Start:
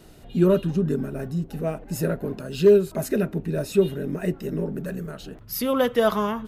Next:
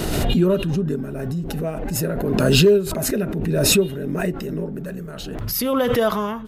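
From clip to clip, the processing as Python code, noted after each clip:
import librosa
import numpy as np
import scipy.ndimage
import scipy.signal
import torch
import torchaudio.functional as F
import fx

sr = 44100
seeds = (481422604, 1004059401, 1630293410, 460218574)

y = fx.pre_swell(x, sr, db_per_s=25.0)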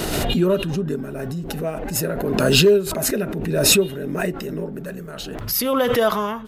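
y = fx.low_shelf(x, sr, hz=290.0, db=-7.0)
y = F.gain(torch.from_numpy(y), 2.5).numpy()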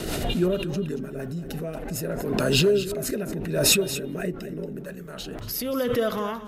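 y = fx.rotary_switch(x, sr, hz=6.3, then_hz=0.7, switch_at_s=1.32)
y = y + 10.0 ** (-13.0 / 20.0) * np.pad(y, (int(230 * sr / 1000.0), 0))[:len(y)]
y = F.gain(torch.from_numpy(y), -3.5).numpy()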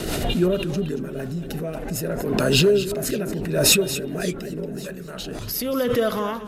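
y = np.clip(x, -10.0 ** (-9.0 / 20.0), 10.0 ** (-9.0 / 20.0))
y = fx.echo_warbled(y, sr, ms=564, feedback_pct=56, rate_hz=2.8, cents=177, wet_db=-20.5)
y = F.gain(torch.from_numpy(y), 3.0).numpy()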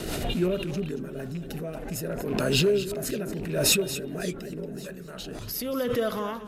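y = fx.rattle_buzz(x, sr, strikes_db=-25.0, level_db=-30.0)
y = F.gain(torch.from_numpy(y), -5.5).numpy()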